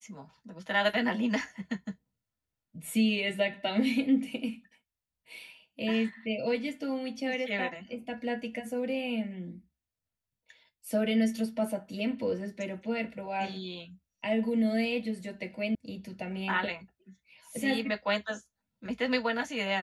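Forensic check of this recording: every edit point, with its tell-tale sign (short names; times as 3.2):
15.75 sound cut off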